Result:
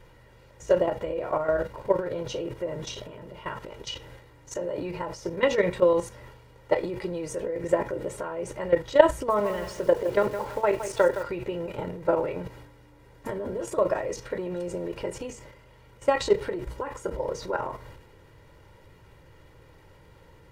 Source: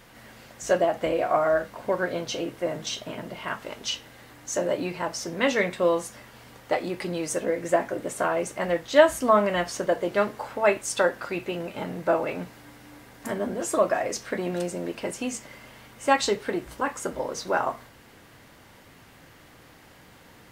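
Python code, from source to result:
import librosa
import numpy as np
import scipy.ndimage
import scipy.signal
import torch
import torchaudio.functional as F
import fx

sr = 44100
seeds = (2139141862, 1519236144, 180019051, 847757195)

y = fx.high_shelf(x, sr, hz=2800.0, db=-2.0)
y = fx.level_steps(y, sr, step_db=11)
y = y + 0.68 * np.pad(y, (int(2.1 * sr / 1000.0), 0))[:len(y)]
y = fx.transient(y, sr, attack_db=5, sustain_db=9)
y = fx.tilt_eq(y, sr, slope=-2.0)
y = fx.notch(y, sr, hz=1500.0, q=20.0)
y = fx.echo_crushed(y, sr, ms=165, feedback_pct=35, bits=6, wet_db=-10, at=(9.13, 11.23))
y = y * librosa.db_to_amplitude(-3.5)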